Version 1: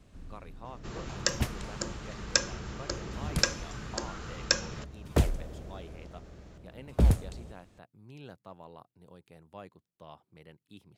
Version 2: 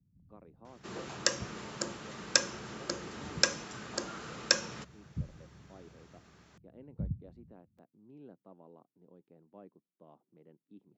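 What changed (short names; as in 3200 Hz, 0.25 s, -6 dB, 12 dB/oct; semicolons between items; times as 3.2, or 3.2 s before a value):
speech: add band-pass 270 Hz, Q 1.2; first sound: add inverse Chebyshev low-pass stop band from 730 Hz, stop band 70 dB; master: add HPF 180 Hz 12 dB/oct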